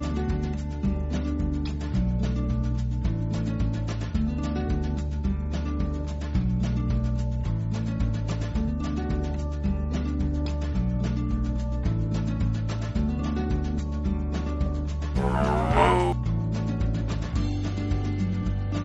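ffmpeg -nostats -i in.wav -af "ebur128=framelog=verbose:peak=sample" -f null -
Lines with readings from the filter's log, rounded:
Integrated loudness:
  I:         -27.6 LUFS
  Threshold: -37.6 LUFS
Loudness range:
  LRA:         2.9 LU
  Threshold: -47.5 LUFS
  LRA low:   -28.4 LUFS
  LRA high:  -25.5 LUFS
Sample peak:
  Peak:       -6.5 dBFS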